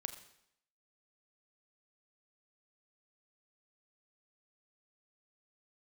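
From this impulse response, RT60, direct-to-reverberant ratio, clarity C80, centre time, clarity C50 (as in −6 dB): 0.75 s, 7.5 dB, 12.0 dB, 13 ms, 11.0 dB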